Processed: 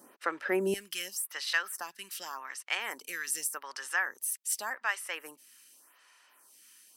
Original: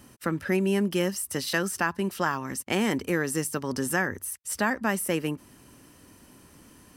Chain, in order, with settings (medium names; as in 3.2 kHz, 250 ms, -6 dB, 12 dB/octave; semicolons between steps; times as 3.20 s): high-pass 360 Hz 12 dB/octave, from 0.74 s 1.3 kHz; lamp-driven phase shifter 0.86 Hz; trim +1.5 dB